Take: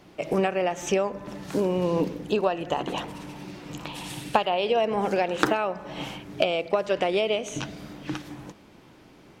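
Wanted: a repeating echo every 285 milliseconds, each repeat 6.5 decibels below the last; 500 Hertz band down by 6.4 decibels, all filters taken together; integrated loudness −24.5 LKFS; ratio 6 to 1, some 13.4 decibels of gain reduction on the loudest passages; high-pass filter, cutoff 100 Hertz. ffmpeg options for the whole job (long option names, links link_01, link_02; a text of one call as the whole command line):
ffmpeg -i in.wav -af "highpass=100,equalizer=frequency=500:width_type=o:gain=-8.5,acompressor=threshold=-34dB:ratio=6,aecho=1:1:285|570|855|1140|1425|1710:0.473|0.222|0.105|0.0491|0.0231|0.0109,volume=13.5dB" out.wav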